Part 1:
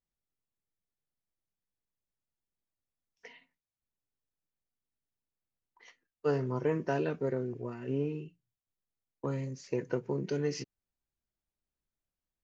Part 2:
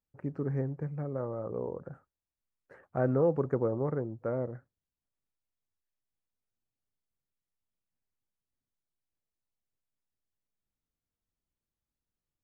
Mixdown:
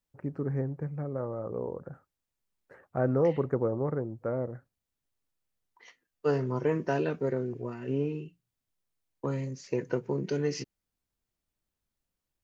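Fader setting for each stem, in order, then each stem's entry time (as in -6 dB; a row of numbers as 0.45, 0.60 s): +2.5, +1.0 dB; 0.00, 0.00 s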